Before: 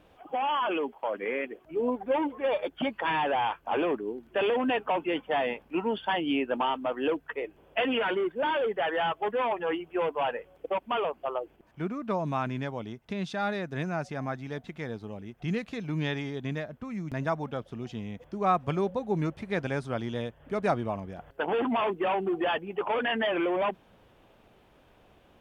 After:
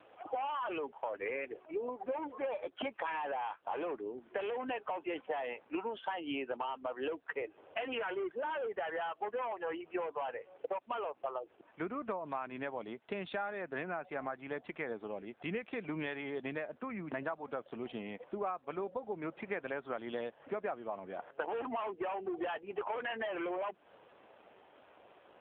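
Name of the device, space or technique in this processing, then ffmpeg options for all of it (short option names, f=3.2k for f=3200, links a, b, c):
voicemail: -filter_complex "[0:a]asettb=1/sr,asplit=3[a][b][c];[a]atrim=end=1.304[d];[b]atrim=start=1.3:end=3.28,asetpts=PTS-STARTPTS,afade=t=in:d=0.004:c=qsin,afade=t=out:st=1.976:d=0.004:c=qsin,bandreject=f=1.9k:w=26[e];[c]atrim=start=3.276[f];[d][e]acrossfade=d=0.004:c1=hsin:c2=qsin[g];[g][f]acrossfade=d=0.004:c1=qsin:c2=hsin,highpass=400,lowpass=3.1k,acompressor=threshold=-38dB:ratio=12,volume=4.5dB" -ar 8000 -c:a libopencore_amrnb -b:a 7400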